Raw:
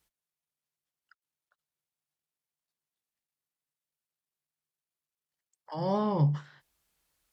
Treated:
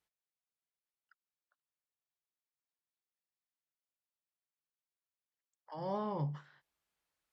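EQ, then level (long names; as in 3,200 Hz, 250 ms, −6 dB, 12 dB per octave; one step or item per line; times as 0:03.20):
low-pass filter 3,600 Hz 6 dB per octave
spectral tilt +2.5 dB per octave
high-shelf EQ 2,300 Hz −9.5 dB
−5.0 dB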